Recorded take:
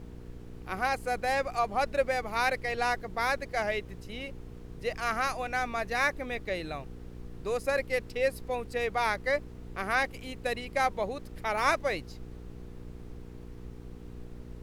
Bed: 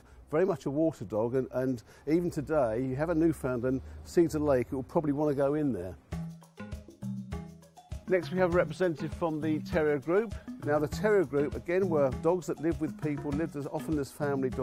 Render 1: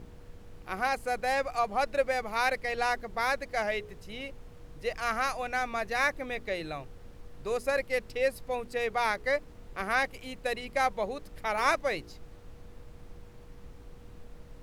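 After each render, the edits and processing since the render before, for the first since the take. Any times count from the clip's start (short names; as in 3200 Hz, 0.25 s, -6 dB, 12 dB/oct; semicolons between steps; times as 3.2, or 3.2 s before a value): de-hum 60 Hz, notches 7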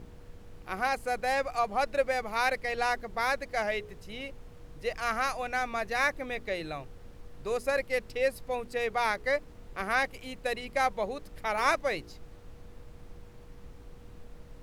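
nothing audible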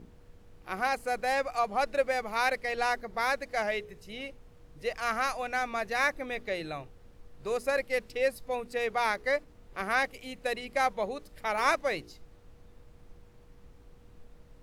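noise print and reduce 6 dB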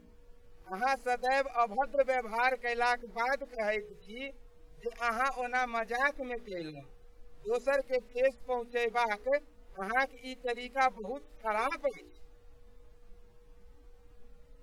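median-filter separation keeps harmonic; bell 110 Hz -4.5 dB 1.5 oct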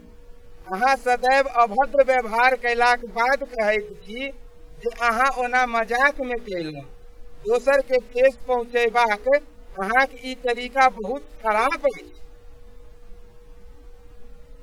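gain +11.5 dB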